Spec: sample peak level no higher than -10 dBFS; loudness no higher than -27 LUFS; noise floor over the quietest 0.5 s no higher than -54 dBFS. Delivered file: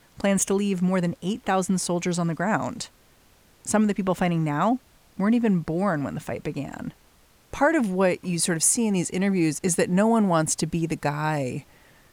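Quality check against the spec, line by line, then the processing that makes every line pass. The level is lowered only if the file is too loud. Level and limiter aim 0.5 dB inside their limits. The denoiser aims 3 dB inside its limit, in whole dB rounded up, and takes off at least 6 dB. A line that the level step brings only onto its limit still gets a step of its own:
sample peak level -8.5 dBFS: fail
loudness -24.0 LUFS: fail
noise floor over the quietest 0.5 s -57 dBFS: OK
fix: gain -3.5 dB

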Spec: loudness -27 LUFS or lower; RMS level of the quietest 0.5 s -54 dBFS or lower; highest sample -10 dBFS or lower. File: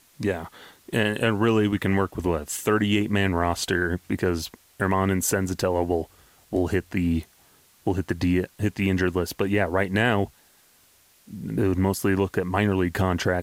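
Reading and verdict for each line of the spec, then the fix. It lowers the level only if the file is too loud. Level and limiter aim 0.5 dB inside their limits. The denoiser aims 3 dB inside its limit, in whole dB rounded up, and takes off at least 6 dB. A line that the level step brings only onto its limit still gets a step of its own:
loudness -24.5 LUFS: fail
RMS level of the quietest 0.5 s -59 dBFS: OK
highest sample -7.0 dBFS: fail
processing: gain -3 dB; limiter -10.5 dBFS

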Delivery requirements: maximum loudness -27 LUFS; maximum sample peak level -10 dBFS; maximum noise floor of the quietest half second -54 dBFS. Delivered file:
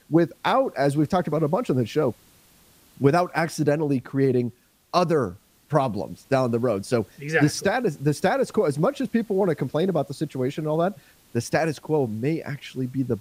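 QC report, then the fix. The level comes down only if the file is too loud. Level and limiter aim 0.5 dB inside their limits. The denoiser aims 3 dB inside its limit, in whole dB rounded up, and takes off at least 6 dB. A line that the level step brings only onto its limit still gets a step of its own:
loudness -24.0 LUFS: fail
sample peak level -4.5 dBFS: fail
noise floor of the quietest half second -56 dBFS: OK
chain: gain -3.5 dB; limiter -10.5 dBFS

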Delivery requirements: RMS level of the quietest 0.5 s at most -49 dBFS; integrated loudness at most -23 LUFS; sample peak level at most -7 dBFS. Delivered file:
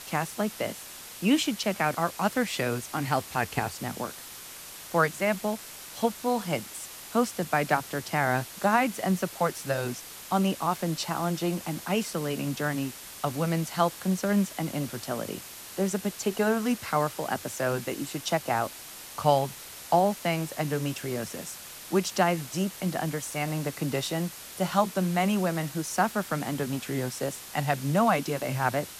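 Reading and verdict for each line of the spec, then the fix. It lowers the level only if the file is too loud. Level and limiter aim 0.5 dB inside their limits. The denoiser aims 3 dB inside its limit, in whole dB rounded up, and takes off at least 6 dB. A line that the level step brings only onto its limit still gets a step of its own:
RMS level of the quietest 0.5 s -44 dBFS: fail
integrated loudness -28.5 LUFS: OK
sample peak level -9.5 dBFS: OK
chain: denoiser 8 dB, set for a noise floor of -44 dBFS

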